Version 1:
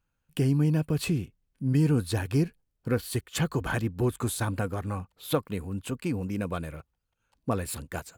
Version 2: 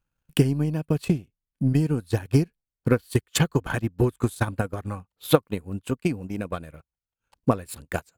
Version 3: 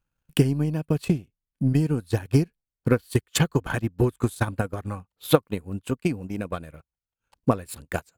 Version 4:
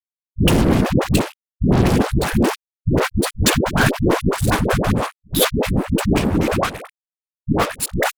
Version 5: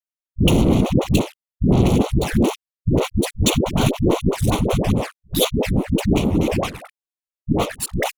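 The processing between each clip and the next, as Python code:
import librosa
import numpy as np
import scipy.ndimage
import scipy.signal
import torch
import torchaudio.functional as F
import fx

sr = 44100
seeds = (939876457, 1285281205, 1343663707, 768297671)

y1 = fx.transient(x, sr, attack_db=12, sustain_db=-12)
y1 = y1 * librosa.db_to_amplitude(-2.0)
y2 = y1
y3 = fx.whisperise(y2, sr, seeds[0])
y3 = fx.fuzz(y3, sr, gain_db=33.0, gate_db=-40.0)
y3 = fx.dispersion(y3, sr, late='highs', ms=114.0, hz=420.0)
y3 = y3 * librosa.db_to_amplitude(1.0)
y4 = fx.env_flanger(y3, sr, rest_ms=3.2, full_db=-14.0)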